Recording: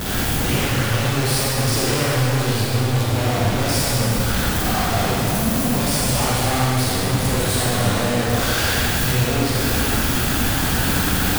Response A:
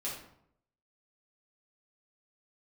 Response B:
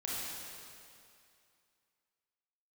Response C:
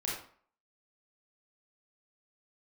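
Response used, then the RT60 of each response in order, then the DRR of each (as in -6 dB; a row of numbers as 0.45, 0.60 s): B; 0.70, 2.5, 0.50 s; -7.0, -6.5, -5.5 dB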